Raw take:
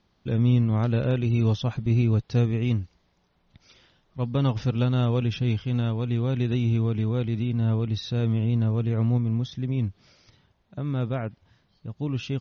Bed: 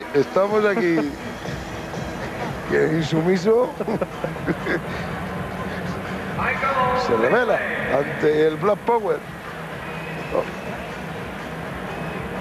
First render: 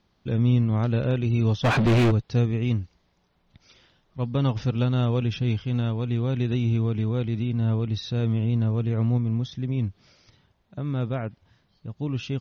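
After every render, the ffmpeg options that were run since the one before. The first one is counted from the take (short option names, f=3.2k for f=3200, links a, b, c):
-filter_complex "[0:a]asplit=3[a][b][c];[a]afade=t=out:st=1.63:d=0.02[d];[b]asplit=2[e][f];[f]highpass=f=720:p=1,volume=39dB,asoftclip=type=tanh:threshold=-12dB[g];[e][g]amix=inputs=2:normalize=0,lowpass=f=1.7k:p=1,volume=-6dB,afade=t=in:st=1.63:d=0.02,afade=t=out:st=2.1:d=0.02[h];[c]afade=t=in:st=2.1:d=0.02[i];[d][h][i]amix=inputs=3:normalize=0"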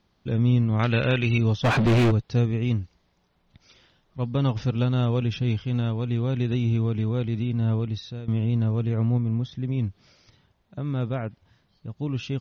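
-filter_complex "[0:a]asettb=1/sr,asplit=3[a][b][c];[a]atrim=end=0.794[d];[b]atrim=start=0.79:end=1.38,asetpts=PTS-STARTPTS,afade=t=in:d=0.004:c=qsin,afade=t=out:st=0.586:d=0.004:c=qsin,equalizer=f=2.4k:t=o:w=2.2:g=14[e];[c]atrim=start=1.376[f];[d][e]acrossfade=d=0.004:c1=hsin:c2=qsin[g];[g][f]acrossfade=d=0.004:c1=qsin:c2=hsin,asettb=1/sr,asplit=3[h][i][j];[h]atrim=end=8.954[k];[i]atrim=start=8.95:end=9.65,asetpts=PTS-STARTPTS,afade=t=in:d=0.004:c=qsin,afade=t=out:st=0.696:d=0.004:c=qsin,highshelf=f=5.3k:g=-11[l];[j]atrim=start=9.646[m];[k][l]acrossfade=d=0.004:c1=hsin:c2=qsin[n];[n][m]acrossfade=d=0.004:c1=qsin:c2=hsin,asplit=2[o][p];[o]atrim=end=8.28,asetpts=PTS-STARTPTS,afade=t=out:st=7.79:d=0.49:silence=0.158489[q];[p]atrim=start=8.28,asetpts=PTS-STARTPTS,afade=t=in:d=0.004:c=hsin:silence=0.158489[r];[q][r]concat=n=2:v=0:a=1"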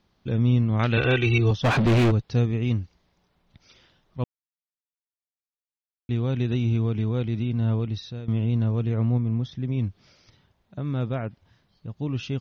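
-filter_complex "[0:a]asettb=1/sr,asplit=3[a][b][c];[a]atrim=end=0.974[d];[b]atrim=start=0.97:end=1.51,asetpts=PTS-STARTPTS,afade=t=in:d=0.004:c=qsin,afade=t=out:st=0.536:d=0.004:c=qsin,aecho=1:1:2.6:0.97,atrim=end_sample=23814[e];[c]atrim=start=1.506[f];[d][e]acrossfade=d=0.004:c1=hsin:c2=qsin[g];[g][f]acrossfade=d=0.004:c1=qsin:c2=hsin,asplit=3[h][i][j];[h]atrim=end=4.24,asetpts=PTS-STARTPTS,afade=t=out:st=4.236:d=0.004:c=hsin[k];[i]atrim=start=4.24:end=6.09,asetpts=PTS-STARTPTS,volume=0[l];[j]atrim=start=6.09,asetpts=PTS-STARTPTS,afade=t=in:d=0.004:c=hsin[m];[k][l][m]concat=n=3:v=0:a=1"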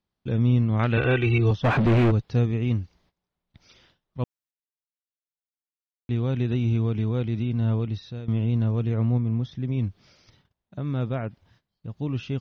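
-filter_complex "[0:a]agate=range=-17dB:threshold=-60dB:ratio=16:detection=peak,acrossover=split=2800[a][b];[b]acompressor=threshold=-47dB:ratio=4:attack=1:release=60[c];[a][c]amix=inputs=2:normalize=0"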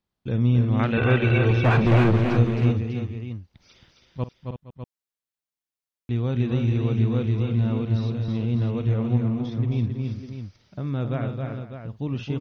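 -af "aecho=1:1:50|269|322|466|601:0.168|0.562|0.316|0.15|0.335"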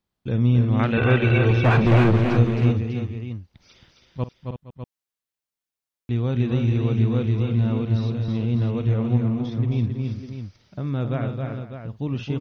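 -af "volume=1.5dB"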